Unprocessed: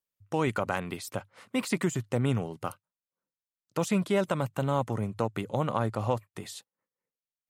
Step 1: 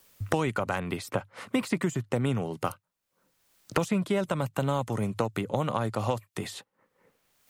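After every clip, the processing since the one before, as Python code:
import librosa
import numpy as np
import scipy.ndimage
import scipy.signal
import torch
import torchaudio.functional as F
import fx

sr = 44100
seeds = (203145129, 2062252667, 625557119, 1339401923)

y = fx.band_squash(x, sr, depth_pct=100)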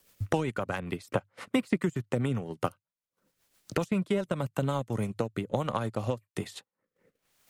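y = fx.transient(x, sr, attack_db=2, sustain_db=-11)
y = fx.rotary_switch(y, sr, hz=7.5, then_hz=1.2, switch_at_s=4.24)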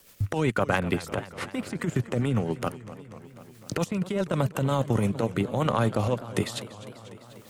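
y = fx.over_compress(x, sr, threshold_db=-31.0, ratio=-1.0)
y = fx.echo_warbled(y, sr, ms=248, feedback_pct=72, rate_hz=2.8, cents=202, wet_db=-16)
y = y * librosa.db_to_amplitude(6.5)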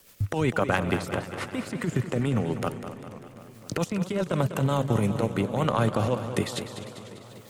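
y = fx.echo_feedback(x, sr, ms=199, feedback_pct=56, wet_db=-10.5)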